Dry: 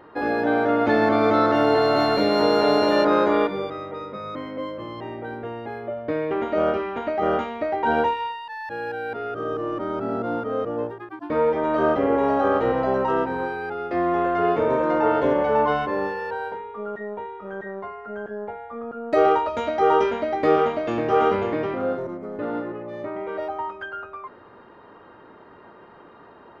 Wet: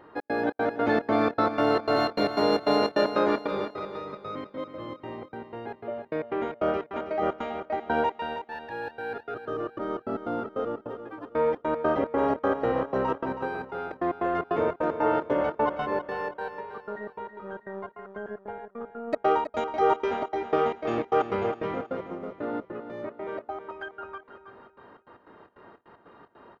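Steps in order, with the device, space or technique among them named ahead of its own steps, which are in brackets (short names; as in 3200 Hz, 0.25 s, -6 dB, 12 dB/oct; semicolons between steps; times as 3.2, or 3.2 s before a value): feedback echo 0.501 s, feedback 39%, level -20 dB; trance gate with a delay (step gate "xx.xx.x." 152 bpm -60 dB; feedback echo 0.322 s, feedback 36%, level -10 dB); gain -4 dB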